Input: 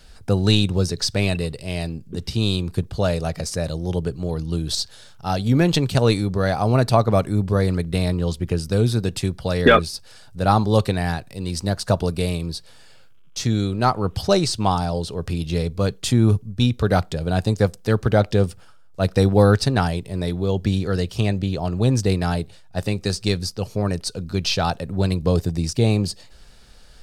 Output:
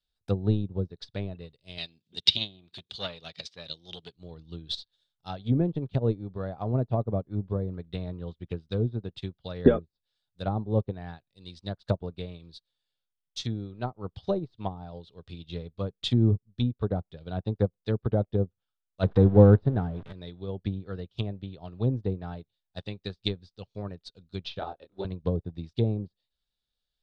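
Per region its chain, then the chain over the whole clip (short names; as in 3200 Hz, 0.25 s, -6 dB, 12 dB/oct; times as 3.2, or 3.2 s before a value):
1.78–4.16 weighting filter D + upward compressor, threshold -24 dBFS + core saturation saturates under 1700 Hz
19.03–20.13 zero-crossing step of -20.5 dBFS + bell 1600 Hz +6 dB 0.52 oct + mismatched tape noise reduction encoder only
24.59–25.05 resonant low shelf 240 Hz -9.5 dB, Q 1.5 + doubler 26 ms -2 dB
whole clip: treble ducked by the level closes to 540 Hz, closed at -14 dBFS; bell 3600 Hz +15 dB 0.54 oct; upward expander 2.5:1, over -38 dBFS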